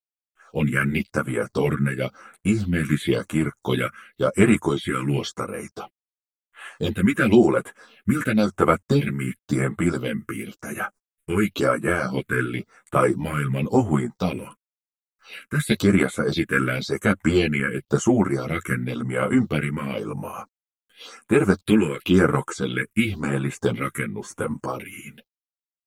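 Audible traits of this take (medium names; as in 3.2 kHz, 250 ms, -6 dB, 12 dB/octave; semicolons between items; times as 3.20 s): a quantiser's noise floor 12-bit, dither none; phasing stages 4, 0.95 Hz, lowest notch 700–5000 Hz; tremolo triangle 1.4 Hz, depth 45%; a shimmering, thickened sound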